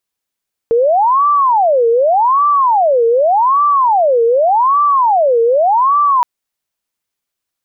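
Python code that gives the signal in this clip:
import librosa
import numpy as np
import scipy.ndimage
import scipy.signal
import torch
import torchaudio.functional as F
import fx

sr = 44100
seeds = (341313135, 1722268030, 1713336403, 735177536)

y = fx.siren(sr, length_s=5.52, kind='wail', low_hz=459.0, high_hz=1170.0, per_s=0.85, wave='sine', level_db=-8.0)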